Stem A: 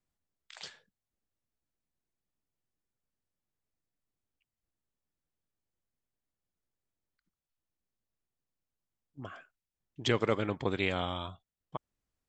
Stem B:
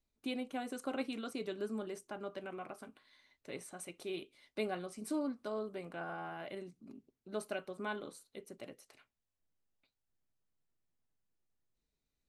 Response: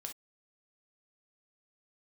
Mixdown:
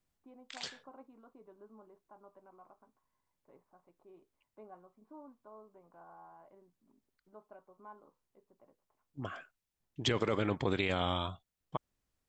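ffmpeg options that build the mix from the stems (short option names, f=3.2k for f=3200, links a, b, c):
-filter_complex "[0:a]volume=3dB[a];[1:a]lowpass=f=980:t=q:w=4.9,volume=-18.5dB[b];[a][b]amix=inputs=2:normalize=0,alimiter=limit=-19dB:level=0:latency=1:release=24"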